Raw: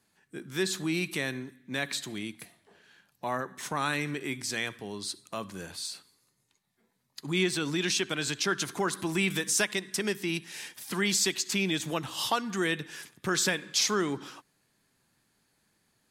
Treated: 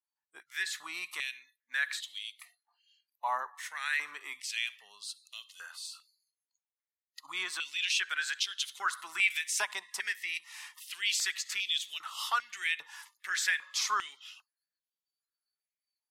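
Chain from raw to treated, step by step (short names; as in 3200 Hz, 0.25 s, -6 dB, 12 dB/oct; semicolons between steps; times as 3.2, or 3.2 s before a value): spectral noise reduction 27 dB; stepped high-pass 2.5 Hz 930–3200 Hz; gain -6.5 dB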